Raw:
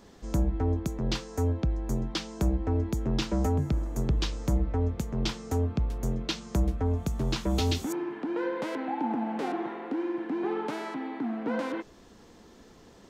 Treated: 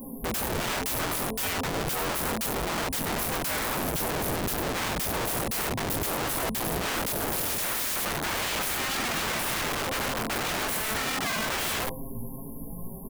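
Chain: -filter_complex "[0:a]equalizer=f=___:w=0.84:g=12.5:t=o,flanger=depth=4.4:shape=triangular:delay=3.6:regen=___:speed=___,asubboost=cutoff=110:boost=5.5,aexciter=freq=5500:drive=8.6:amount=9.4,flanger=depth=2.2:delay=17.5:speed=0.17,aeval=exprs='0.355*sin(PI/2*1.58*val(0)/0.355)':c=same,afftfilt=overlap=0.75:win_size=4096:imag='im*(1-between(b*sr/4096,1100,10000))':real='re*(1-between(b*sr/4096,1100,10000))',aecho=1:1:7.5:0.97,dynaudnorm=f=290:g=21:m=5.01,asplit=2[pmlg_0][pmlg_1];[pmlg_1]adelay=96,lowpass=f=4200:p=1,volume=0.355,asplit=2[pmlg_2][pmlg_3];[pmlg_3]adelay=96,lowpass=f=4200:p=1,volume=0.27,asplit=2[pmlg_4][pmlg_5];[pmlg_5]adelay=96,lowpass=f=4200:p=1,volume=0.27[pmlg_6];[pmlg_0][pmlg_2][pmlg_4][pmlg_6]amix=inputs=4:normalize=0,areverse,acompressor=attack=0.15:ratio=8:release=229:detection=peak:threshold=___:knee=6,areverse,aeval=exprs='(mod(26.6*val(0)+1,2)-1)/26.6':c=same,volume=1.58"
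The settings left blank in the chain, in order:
210, 28, 0.45, 0.112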